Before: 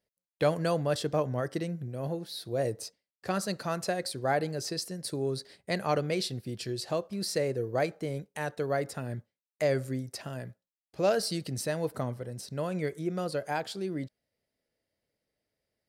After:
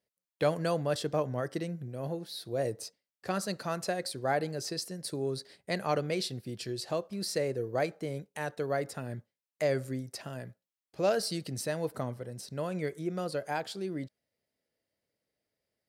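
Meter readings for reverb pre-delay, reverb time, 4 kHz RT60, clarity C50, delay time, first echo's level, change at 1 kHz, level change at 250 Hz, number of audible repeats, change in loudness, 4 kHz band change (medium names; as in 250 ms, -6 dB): no reverb, no reverb, no reverb, no reverb, no echo, no echo, -1.5 dB, -2.0 dB, no echo, -1.5 dB, -1.5 dB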